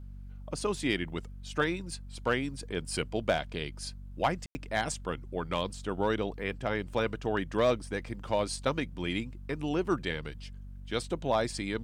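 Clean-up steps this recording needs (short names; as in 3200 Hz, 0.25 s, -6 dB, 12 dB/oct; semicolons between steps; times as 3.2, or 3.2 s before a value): de-hum 47.8 Hz, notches 5; room tone fill 4.46–4.55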